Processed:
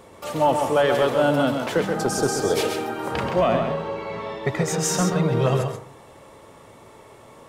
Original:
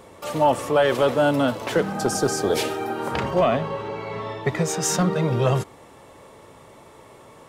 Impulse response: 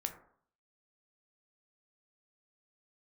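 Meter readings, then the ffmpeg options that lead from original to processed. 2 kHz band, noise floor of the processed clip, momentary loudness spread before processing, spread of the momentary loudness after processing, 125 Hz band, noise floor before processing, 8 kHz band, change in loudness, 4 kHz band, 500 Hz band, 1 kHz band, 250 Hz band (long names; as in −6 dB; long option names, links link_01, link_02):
+0.5 dB, −48 dBFS, 10 LU, 9 LU, 0.0 dB, −48 dBFS, 0.0 dB, 0.0 dB, 0.0 dB, +0.5 dB, 0.0 dB, 0.0 dB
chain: -filter_complex "[0:a]asplit=2[link_01][link_02];[1:a]atrim=start_sample=2205,adelay=131[link_03];[link_02][link_03]afir=irnorm=-1:irlink=0,volume=-5dB[link_04];[link_01][link_04]amix=inputs=2:normalize=0,volume=-1dB"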